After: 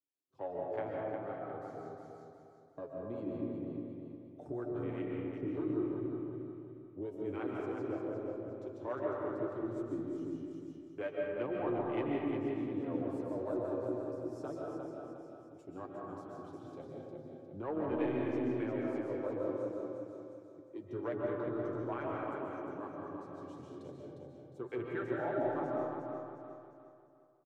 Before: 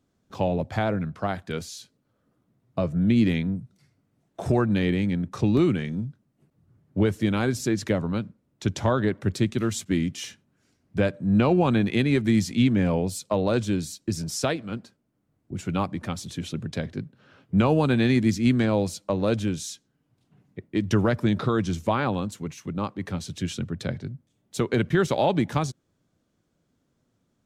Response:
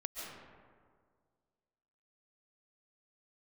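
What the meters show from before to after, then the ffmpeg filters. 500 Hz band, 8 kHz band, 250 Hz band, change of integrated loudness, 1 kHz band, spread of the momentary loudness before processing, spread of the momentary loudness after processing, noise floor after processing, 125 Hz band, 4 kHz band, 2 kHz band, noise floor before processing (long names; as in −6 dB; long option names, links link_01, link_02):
−9.5 dB, below −30 dB, −14.0 dB, −14.0 dB, −12.0 dB, 13 LU, 14 LU, −57 dBFS, −21.0 dB, below −25 dB, −16.0 dB, −73 dBFS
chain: -filter_complex "[0:a]afwtdn=0.0282,highpass=63,lowshelf=frequency=260:width_type=q:width=3:gain=-7,bandreject=frequency=132.7:width_type=h:width=4,bandreject=frequency=265.4:width_type=h:width=4,bandreject=frequency=398.1:width_type=h:width=4,bandreject=frequency=530.8:width_type=h:width=4,bandreject=frequency=663.5:width_type=h:width=4,bandreject=frequency=796.2:width_type=h:width=4,bandreject=frequency=928.9:width_type=h:width=4,bandreject=frequency=1061.6:width_type=h:width=4,bandreject=frequency=1194.3:width_type=h:width=4,bandreject=frequency=1327:width_type=h:width=4,bandreject=frequency=1459.7:width_type=h:width=4,bandreject=frequency=1592.4:width_type=h:width=4,bandreject=frequency=1725.1:width_type=h:width=4,bandreject=frequency=1857.8:width_type=h:width=4,bandreject=frequency=1990.5:width_type=h:width=4,bandreject=frequency=2123.2:width_type=h:width=4,bandreject=frequency=2255.9:width_type=h:width=4,bandreject=frequency=2388.6:width_type=h:width=4,bandreject=frequency=2521.3:width_type=h:width=4,bandreject=frequency=2654:width_type=h:width=4,bandreject=frequency=2786.7:width_type=h:width=4,bandreject=frequency=2919.4:width_type=h:width=4,bandreject=frequency=3052.1:width_type=h:width=4,bandreject=frequency=3184.8:width_type=h:width=4,bandreject=frequency=3317.5:width_type=h:width=4,bandreject=frequency=3450.2:width_type=h:width=4,bandreject=frequency=3582.9:width_type=h:width=4,bandreject=frequency=3715.6:width_type=h:width=4,bandreject=frequency=3848.3:width_type=h:width=4,bandreject=frequency=3981:width_type=h:width=4,bandreject=frequency=4113.7:width_type=h:width=4,bandreject=frequency=4246.4:width_type=h:width=4,bandreject=frequency=4379.1:width_type=h:width=4,flanger=delay=6.6:depth=1.7:regen=34:speed=1.8:shape=triangular,asoftclip=type=tanh:threshold=-13.5dB,acrossover=split=420[link_01][link_02];[link_01]aeval=exprs='val(0)*(1-0.7/2+0.7/2*cos(2*PI*3.3*n/s))':channel_layout=same[link_03];[link_02]aeval=exprs='val(0)*(1-0.7/2-0.7/2*cos(2*PI*3.3*n/s))':channel_layout=same[link_04];[link_03][link_04]amix=inputs=2:normalize=0,aecho=1:1:356|712|1068|1424|1780:0.531|0.202|0.0767|0.0291|0.0111[link_05];[1:a]atrim=start_sample=2205[link_06];[link_05][link_06]afir=irnorm=-1:irlink=0,adynamicequalizer=threshold=0.00316:dfrequency=2500:dqfactor=0.7:tfrequency=2500:tqfactor=0.7:attack=5:release=100:ratio=0.375:range=3:mode=cutabove:tftype=highshelf,volume=-6.5dB"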